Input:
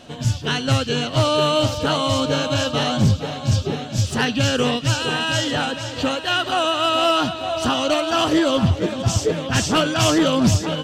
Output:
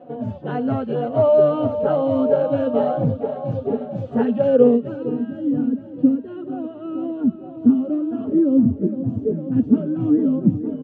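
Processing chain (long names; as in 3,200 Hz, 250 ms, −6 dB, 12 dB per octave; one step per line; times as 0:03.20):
loudspeaker in its box 220–9,900 Hz, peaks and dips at 230 Hz +5 dB, 330 Hz −6 dB, 670 Hz −6 dB, 980 Hz −6 dB, 5,300 Hz −8 dB
low-pass filter sweep 660 Hz → 290 Hz, 0:04.42–0:05.32
barber-pole flanger 3.5 ms −2 Hz
level +5 dB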